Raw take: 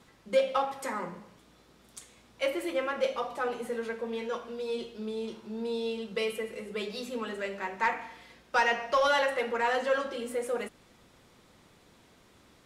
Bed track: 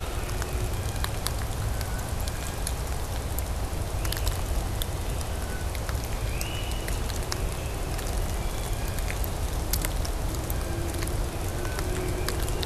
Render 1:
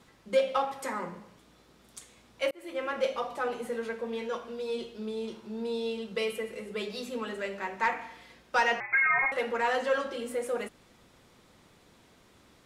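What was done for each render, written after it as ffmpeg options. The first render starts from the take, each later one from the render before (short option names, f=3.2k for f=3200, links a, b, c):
-filter_complex "[0:a]asettb=1/sr,asplit=3[a][b][c];[a]atrim=end=8.804[d];[b]atrim=start=8.8:end=9.32,asetpts=PTS-STARTPTS,afade=t=in:d=0.004:c=qsin,afade=t=out:st=0.516:d=0.004:c=qsin,lowpass=f=2.3k:t=q:w=0.5098,lowpass=f=2.3k:t=q:w=0.6013,lowpass=f=2.3k:t=q:w=0.9,lowpass=f=2.3k:t=q:w=2.563,afreqshift=-2700[e];[c]atrim=start=9.316[f];[d][e]acrossfade=d=0.004:c1=hsin:c2=qsin[g];[g][f]acrossfade=d=0.004:c1=qsin:c2=hsin,asplit=2[h][i];[h]atrim=end=2.51,asetpts=PTS-STARTPTS,afade=t=out:st=2.506:d=0.004:c=hsin[j];[i]atrim=start=2.51,asetpts=PTS-STARTPTS,afade=t=in:d=0.42[k];[j][k]concat=n=2:v=0:a=1"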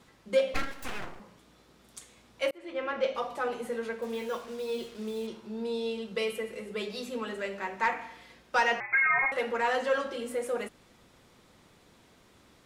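-filter_complex "[0:a]asettb=1/sr,asplit=3[a][b][c];[a]atrim=end=0.544[d];[b]atrim=start=0.54:end=1.2,asetpts=PTS-STARTPTS,afade=t=in:d=0.004:c=qsin,afade=t=out:st=0.656:d=0.004:c=qsin,aeval=exprs='abs(val(0))':c=same[e];[c]atrim=start=1.196[f];[d][e]acrossfade=d=0.004:c1=hsin:c2=qsin[g];[g][f]acrossfade=d=0.004:c1=qsin:c2=hsin,asettb=1/sr,asplit=3[h][i][j];[h]atrim=end=2.584[k];[i]atrim=start=2.58:end=3.15,asetpts=PTS-STARTPTS,afade=t=in:d=0.004:c=qsin,afade=t=out:st=0.566:d=0.004:c=qsin,lowpass=4.6k[l];[j]atrim=start=3.146[m];[k][l]acrossfade=d=0.004:c1=hsin:c2=qsin[n];[n][m]acrossfade=d=0.004:c1=qsin:c2=hsin,asettb=1/sr,asplit=3[o][p][q];[o]atrim=end=4.024[r];[p]atrim=start=4.02:end=5.27,asetpts=PTS-STARTPTS,afade=t=in:d=0.004:c=qsin,afade=t=out:st=1.246:d=0.004:c=qsin,acrusher=bits=7:mix=0:aa=0.5[s];[q]atrim=start=5.266[t];[r][s]acrossfade=d=0.004:c1=hsin:c2=qsin[u];[u][t]acrossfade=d=0.004:c1=qsin:c2=hsin"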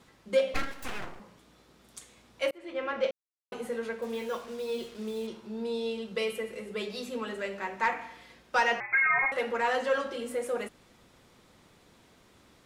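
-filter_complex "[0:a]asplit=3[a][b][c];[a]atrim=end=3.11,asetpts=PTS-STARTPTS,afade=t=out:st=3.106:d=0.004:c=hsin[d];[b]atrim=start=3.11:end=3.52,asetpts=PTS-STARTPTS,volume=0[e];[c]atrim=start=3.52,asetpts=PTS-STARTPTS,afade=t=in:d=0.004:c=hsin[f];[d][e][f]concat=n=3:v=0:a=1"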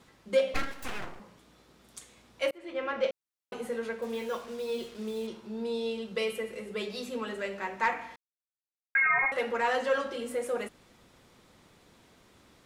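-filter_complex "[0:a]asplit=3[a][b][c];[a]atrim=end=8.16,asetpts=PTS-STARTPTS,afade=t=out:st=8.156:d=0.004:c=hsin[d];[b]atrim=start=8.16:end=8.95,asetpts=PTS-STARTPTS,volume=0[e];[c]atrim=start=8.95,asetpts=PTS-STARTPTS,afade=t=in:d=0.004:c=hsin[f];[d][e][f]concat=n=3:v=0:a=1"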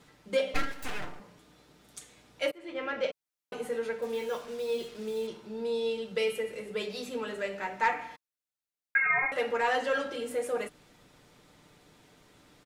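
-af "bandreject=f=1.1k:w=14,aecho=1:1:6.7:0.39"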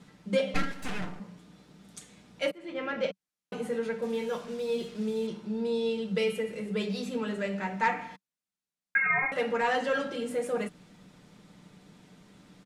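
-af "lowpass=11k,equalizer=f=190:w=2.5:g=14.5"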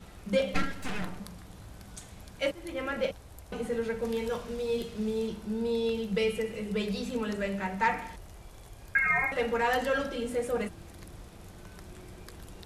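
-filter_complex "[1:a]volume=-19dB[a];[0:a][a]amix=inputs=2:normalize=0"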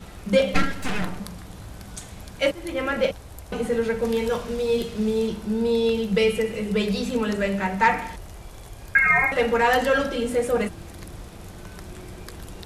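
-af "volume=8dB"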